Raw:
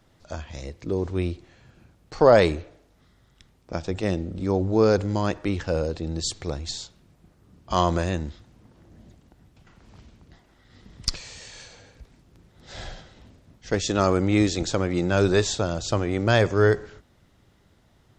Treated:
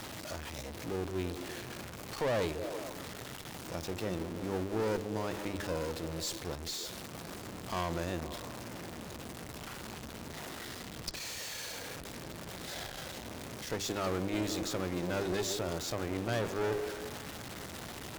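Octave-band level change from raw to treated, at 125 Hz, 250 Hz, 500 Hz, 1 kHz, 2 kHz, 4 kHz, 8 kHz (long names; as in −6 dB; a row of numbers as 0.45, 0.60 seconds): −13.0, −11.0, −12.5, −10.5, −9.5, −7.0, −5.5 decibels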